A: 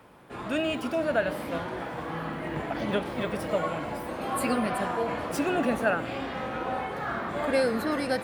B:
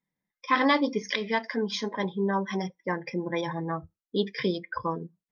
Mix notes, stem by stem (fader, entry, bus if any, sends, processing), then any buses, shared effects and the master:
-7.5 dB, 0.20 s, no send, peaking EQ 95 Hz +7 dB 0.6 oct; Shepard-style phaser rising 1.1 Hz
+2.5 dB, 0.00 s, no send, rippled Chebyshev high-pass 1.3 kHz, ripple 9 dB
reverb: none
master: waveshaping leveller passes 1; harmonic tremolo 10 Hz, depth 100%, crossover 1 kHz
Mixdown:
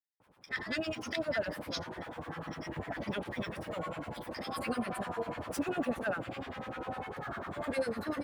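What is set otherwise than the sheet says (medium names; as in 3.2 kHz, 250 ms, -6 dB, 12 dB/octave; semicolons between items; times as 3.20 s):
stem A: missing Shepard-style phaser rising 1.1 Hz; stem B +2.5 dB -> -5.0 dB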